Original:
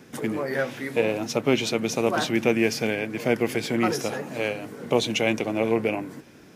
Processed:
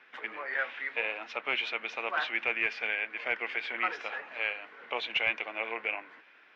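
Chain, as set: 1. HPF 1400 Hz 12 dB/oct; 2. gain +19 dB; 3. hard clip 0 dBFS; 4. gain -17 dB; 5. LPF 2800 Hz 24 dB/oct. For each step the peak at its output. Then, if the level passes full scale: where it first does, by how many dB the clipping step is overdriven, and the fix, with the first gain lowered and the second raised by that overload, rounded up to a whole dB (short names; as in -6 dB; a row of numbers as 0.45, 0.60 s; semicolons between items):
-12.5, +6.5, 0.0, -17.0, -16.0 dBFS; step 2, 6.5 dB; step 2 +12 dB, step 4 -10 dB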